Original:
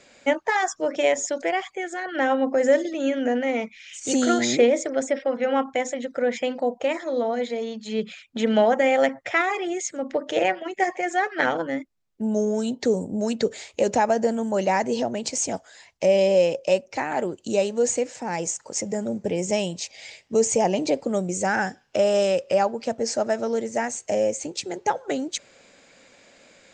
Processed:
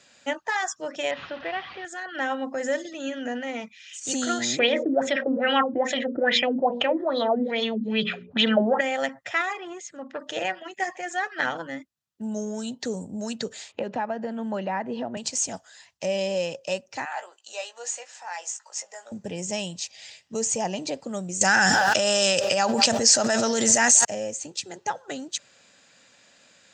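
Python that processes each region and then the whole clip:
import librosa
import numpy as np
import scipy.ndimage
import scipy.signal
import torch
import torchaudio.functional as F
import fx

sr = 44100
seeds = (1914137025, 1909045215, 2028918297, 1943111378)

y = fx.chain(x, sr, fx.delta_mod(bps=32000, step_db=-29.5),
    fx.lowpass(hz=3200.0, slope=24), at=(1.11, 1.85))
y = fx.chain(y, sr, fx.hum_notches(base_hz=60, count=10),
    fx.filter_lfo_lowpass(shape='sine', hz=2.4, low_hz=280.0, high_hz=3900.0, q=4.8),
    fx.env_flatten(amount_pct=50), at=(4.59, 8.81))
y = fx.chain(y, sr, fx.lowpass(hz=2100.0, slope=6),
    fx.transformer_sat(knee_hz=700.0), at=(9.53, 10.2))
y = fx.chain(y, sr, fx.highpass(hz=130.0, slope=24),
    fx.air_absorb(metres=460.0),
    fx.band_squash(depth_pct=100), at=(13.72, 15.17))
y = fx.chain(y, sr, fx.highpass(hz=690.0, slope=24),
    fx.high_shelf(hz=6100.0, db=-9.0),
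    fx.doubler(ms=17.0, db=-7.0), at=(17.05, 19.12))
y = fx.chain(y, sr, fx.high_shelf(hz=2100.0, db=10.5),
    fx.echo_wet_bandpass(ms=190, feedback_pct=44, hz=670.0, wet_db=-22.5),
    fx.env_flatten(amount_pct=100), at=(21.41, 24.05))
y = scipy.signal.sosfilt(scipy.signal.butter(2, 100.0, 'highpass', fs=sr, output='sos'), y)
y = fx.peak_eq(y, sr, hz=410.0, db=-10.5, octaves=2.0)
y = fx.notch(y, sr, hz=2200.0, q=7.1)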